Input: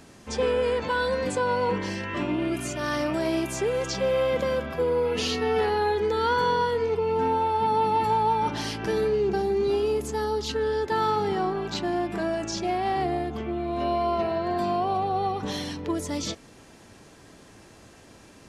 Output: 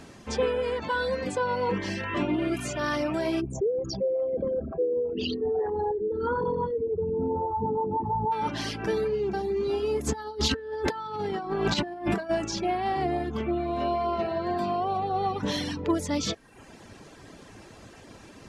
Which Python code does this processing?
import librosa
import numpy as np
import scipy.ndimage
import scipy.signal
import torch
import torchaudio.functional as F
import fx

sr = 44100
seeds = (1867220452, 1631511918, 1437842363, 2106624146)

y = fx.envelope_sharpen(x, sr, power=3.0, at=(3.4, 8.31), fade=0.02)
y = fx.over_compress(y, sr, threshold_db=-32.0, ratio=-0.5, at=(10.06, 12.29), fade=0.02)
y = fx.dereverb_blind(y, sr, rt60_s=0.68)
y = fx.high_shelf(y, sr, hz=7800.0, db=-8.0)
y = fx.rider(y, sr, range_db=10, speed_s=0.5)